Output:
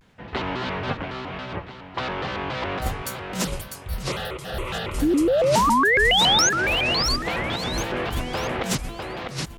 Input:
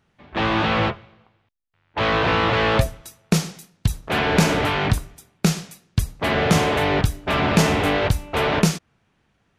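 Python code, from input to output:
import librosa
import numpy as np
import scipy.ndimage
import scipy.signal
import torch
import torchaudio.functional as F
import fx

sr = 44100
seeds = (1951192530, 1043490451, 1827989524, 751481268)

y = fx.over_compress(x, sr, threshold_db=-28.0, ratio=-1.0)
y = fx.fixed_phaser(y, sr, hz=1300.0, stages=8, at=(3.45, 4.91))
y = fx.spec_paint(y, sr, seeds[0], shape='rise', start_s=5.01, length_s=1.49, low_hz=240.0, high_hz=5800.0, level_db=-19.0)
y = fx.echo_feedback(y, sr, ms=664, feedback_pct=34, wet_db=-5)
y = fx.vibrato_shape(y, sr, shape='square', rate_hz=3.6, depth_cents=250.0)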